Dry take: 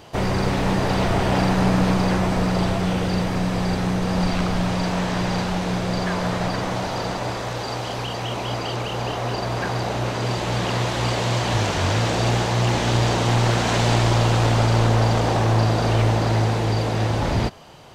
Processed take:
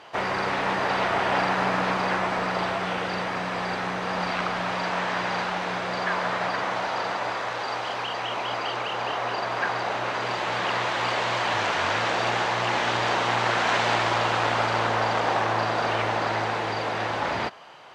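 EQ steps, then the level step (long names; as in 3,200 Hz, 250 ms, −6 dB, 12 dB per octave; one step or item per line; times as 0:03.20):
resonant band-pass 1,500 Hz, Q 0.84
+3.5 dB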